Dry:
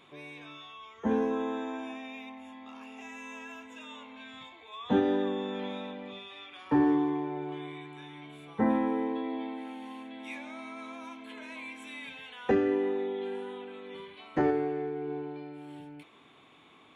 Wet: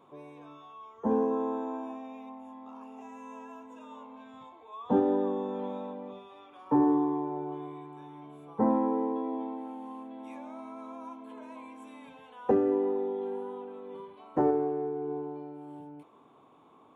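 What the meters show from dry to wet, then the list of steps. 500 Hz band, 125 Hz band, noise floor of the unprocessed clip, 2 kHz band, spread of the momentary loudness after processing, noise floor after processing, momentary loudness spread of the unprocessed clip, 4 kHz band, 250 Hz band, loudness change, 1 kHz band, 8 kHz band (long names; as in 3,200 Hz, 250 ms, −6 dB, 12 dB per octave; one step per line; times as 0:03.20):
+1.5 dB, −1.5 dB, −58 dBFS, −12.5 dB, 22 LU, −58 dBFS, 19 LU, below −10 dB, 0.0 dB, +1.5 dB, +2.0 dB, can't be measured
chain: octave-band graphic EQ 125/250/500/1,000/2,000/4,000 Hz +4/+5/+7/+11/−10/−7 dB
level −7 dB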